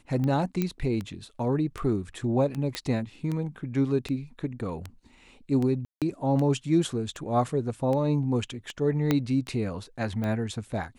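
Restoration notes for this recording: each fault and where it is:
scratch tick 78 rpm −20 dBFS
0:00.62: click −14 dBFS
0:02.75: click −14 dBFS
0:05.85–0:06.02: drop-out 167 ms
0:09.11: click −10 dBFS

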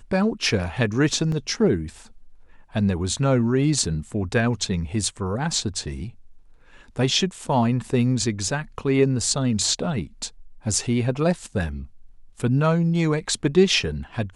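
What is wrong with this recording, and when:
0:01.32: drop-out 2.6 ms

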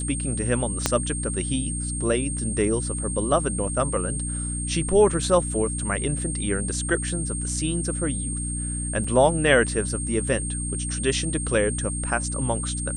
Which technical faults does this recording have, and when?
mains hum 60 Hz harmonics 5 −30 dBFS
whistle 8,600 Hz −30 dBFS
0:00.86: click −4 dBFS
0:09.04: drop-out 4 ms

